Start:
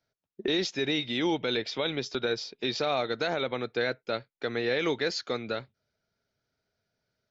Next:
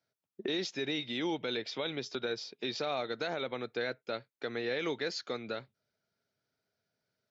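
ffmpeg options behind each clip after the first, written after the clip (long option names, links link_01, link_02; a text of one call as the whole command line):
ffmpeg -i in.wav -filter_complex "[0:a]highpass=110,asplit=2[link_01][link_02];[link_02]acompressor=threshold=-35dB:ratio=6,volume=-2.5dB[link_03];[link_01][link_03]amix=inputs=2:normalize=0,volume=-8dB" out.wav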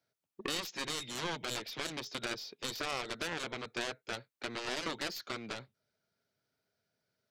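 ffmpeg -i in.wav -af "aeval=exprs='0.0841*(cos(1*acos(clip(val(0)/0.0841,-1,1)))-cos(1*PI/2))+0.0188*(cos(3*acos(clip(val(0)/0.0841,-1,1)))-cos(3*PI/2))+0.0015*(cos(6*acos(clip(val(0)/0.0841,-1,1)))-cos(6*PI/2))+0.0168*(cos(7*acos(clip(val(0)/0.0841,-1,1)))-cos(7*PI/2))':channel_layout=same" out.wav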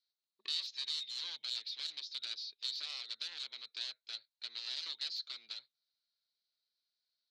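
ffmpeg -i in.wav -af "bandpass=frequency=4100:width_type=q:width=7.4:csg=0,volume=8.5dB" out.wav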